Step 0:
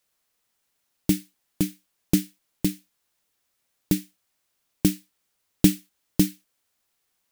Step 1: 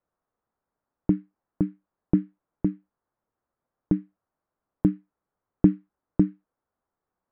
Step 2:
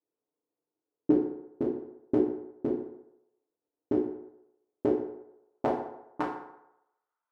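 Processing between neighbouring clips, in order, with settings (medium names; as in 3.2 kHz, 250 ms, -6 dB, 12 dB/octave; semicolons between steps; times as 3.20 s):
low-pass 1.3 kHz 24 dB/octave
cycle switcher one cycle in 3, inverted; band-pass sweep 370 Hz -> 1.3 kHz, 4.61–6.59 s; FDN reverb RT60 0.85 s, low-frequency decay 0.75×, high-frequency decay 0.6×, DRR -3 dB; trim -2 dB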